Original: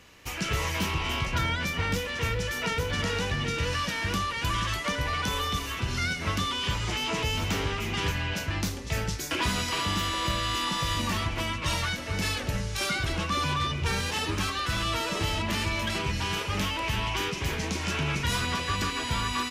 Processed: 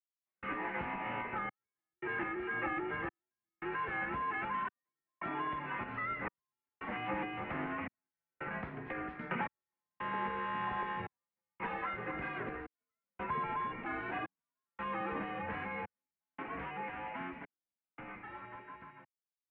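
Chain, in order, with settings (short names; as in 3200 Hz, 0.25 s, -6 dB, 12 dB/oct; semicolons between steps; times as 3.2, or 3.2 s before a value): ending faded out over 6.42 s; 4.54–5.35 comb 2.5 ms, depth 71%; compressor, threshold -30 dBFS, peak gain reduction 8 dB; step gate "....xxxxxxxxxx." 141 bpm -60 dB; mistuned SSB -130 Hz 290–2200 Hz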